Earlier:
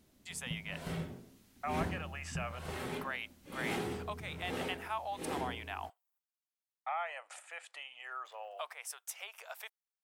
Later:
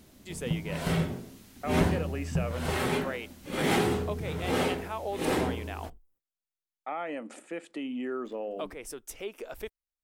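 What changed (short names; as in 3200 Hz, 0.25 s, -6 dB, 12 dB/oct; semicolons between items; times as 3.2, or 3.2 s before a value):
speech: remove steep high-pass 710 Hz 36 dB/oct; background +11.5 dB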